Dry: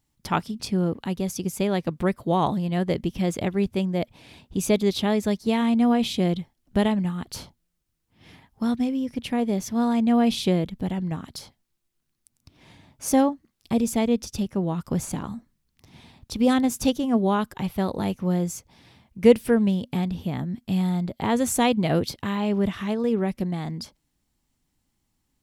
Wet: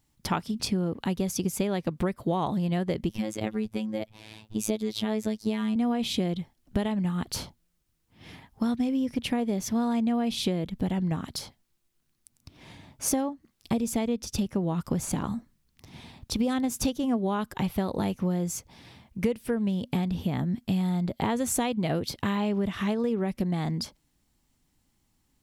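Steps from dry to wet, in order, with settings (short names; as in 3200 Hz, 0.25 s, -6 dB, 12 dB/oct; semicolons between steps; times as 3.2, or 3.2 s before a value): compressor 16:1, threshold -26 dBFS, peak gain reduction 18 dB; 3.09–5.76 robotiser 108 Hz; gain +3 dB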